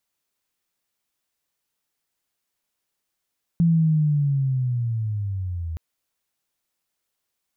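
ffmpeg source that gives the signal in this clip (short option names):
-f lavfi -i "aevalsrc='pow(10,(-14-12.5*t/2.17)/20)*sin(2*PI*(170*t-91*t*t/(2*2.17)))':d=2.17:s=44100"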